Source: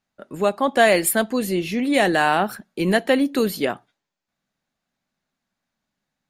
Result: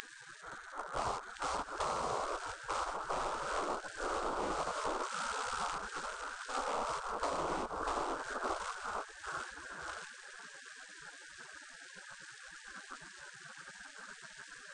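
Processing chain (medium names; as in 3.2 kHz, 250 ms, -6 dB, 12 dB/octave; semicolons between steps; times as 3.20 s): one-bit delta coder 16 kbps, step -27 dBFS; thinning echo 585 ms, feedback 18%, high-pass 470 Hz, level -8 dB; in parallel at -9 dB: short-mantissa float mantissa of 2-bit; on the sum: repeats whose band climbs or falls 105 ms, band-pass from 190 Hz, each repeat 0.7 oct, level -10 dB; speed mistake 78 rpm record played at 33 rpm; spectral gate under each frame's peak -25 dB weak; compression 6:1, threshold -40 dBFS, peak gain reduction 10.5 dB; trim +6.5 dB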